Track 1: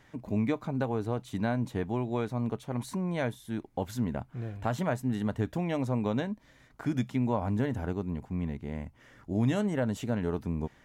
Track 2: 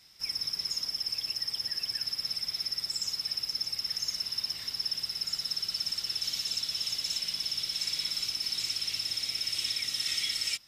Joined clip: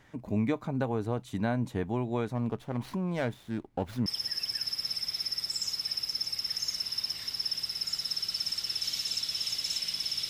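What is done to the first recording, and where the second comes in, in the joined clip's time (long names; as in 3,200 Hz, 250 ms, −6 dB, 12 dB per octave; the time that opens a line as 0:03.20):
track 1
0:02.35–0:04.06: windowed peak hold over 5 samples
0:04.06: continue with track 2 from 0:01.46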